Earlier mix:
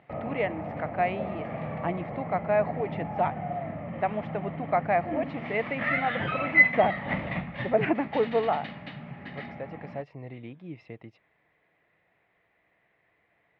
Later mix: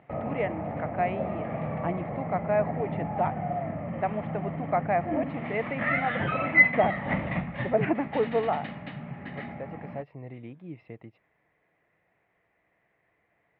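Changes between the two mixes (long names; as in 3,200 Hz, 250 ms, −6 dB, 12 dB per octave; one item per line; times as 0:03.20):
background +3.0 dB
master: add high-frequency loss of the air 300 metres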